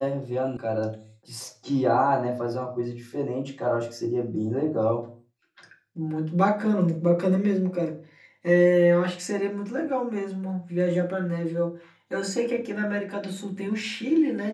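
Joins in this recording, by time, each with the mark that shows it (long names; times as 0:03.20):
0:00.57: cut off before it has died away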